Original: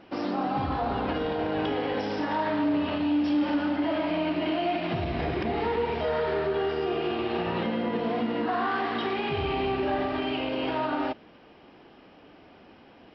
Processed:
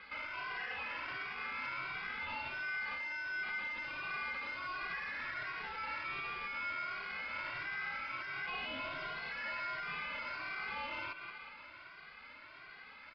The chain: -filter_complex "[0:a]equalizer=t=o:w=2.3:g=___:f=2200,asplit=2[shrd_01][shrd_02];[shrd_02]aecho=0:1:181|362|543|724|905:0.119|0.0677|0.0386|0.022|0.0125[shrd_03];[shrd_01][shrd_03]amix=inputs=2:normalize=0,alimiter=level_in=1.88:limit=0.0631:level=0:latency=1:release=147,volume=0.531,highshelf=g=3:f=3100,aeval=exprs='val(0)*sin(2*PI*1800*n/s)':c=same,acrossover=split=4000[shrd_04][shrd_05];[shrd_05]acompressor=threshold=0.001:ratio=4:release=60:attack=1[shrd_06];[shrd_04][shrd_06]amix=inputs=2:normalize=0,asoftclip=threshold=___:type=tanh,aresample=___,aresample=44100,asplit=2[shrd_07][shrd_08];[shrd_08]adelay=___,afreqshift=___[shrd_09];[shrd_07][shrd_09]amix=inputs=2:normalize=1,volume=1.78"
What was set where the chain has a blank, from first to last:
-3, 0.0133, 11025, 2, 1.4